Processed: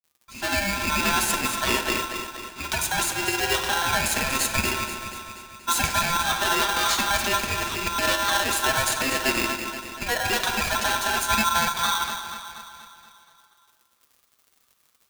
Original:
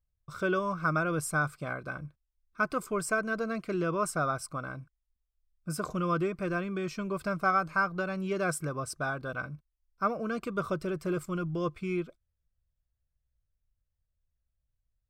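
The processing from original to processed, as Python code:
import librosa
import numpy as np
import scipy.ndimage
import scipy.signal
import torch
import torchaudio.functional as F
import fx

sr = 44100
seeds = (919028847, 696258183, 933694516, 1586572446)

p1 = fx.fade_in_head(x, sr, length_s=1.37)
p2 = fx.weighting(p1, sr, curve='D')
p3 = fx.dmg_crackle(p2, sr, seeds[0], per_s=77.0, level_db=-57.0)
p4 = fx.high_shelf(p3, sr, hz=8900.0, db=10.5)
p5 = fx.over_compress(p4, sr, threshold_db=-32.0, ratio=-1.0)
p6 = p5 + 0.54 * np.pad(p5, (int(7.0 * sr / 1000.0), 0))[:len(p5)]
p7 = p6 + fx.echo_feedback(p6, sr, ms=239, feedback_pct=56, wet_db=-9.5, dry=0)
p8 = fx.room_shoebox(p7, sr, seeds[1], volume_m3=960.0, walls='mixed', distance_m=0.92)
p9 = p8 * np.sign(np.sin(2.0 * np.pi * 1200.0 * np.arange(len(p8)) / sr))
y = p9 * 10.0 ** (6.0 / 20.0)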